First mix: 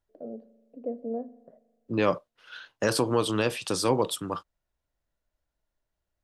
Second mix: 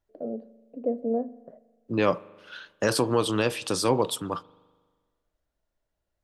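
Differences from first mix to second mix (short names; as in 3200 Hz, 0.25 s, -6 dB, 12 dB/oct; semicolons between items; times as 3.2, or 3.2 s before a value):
first voice +6.0 dB; second voice: send on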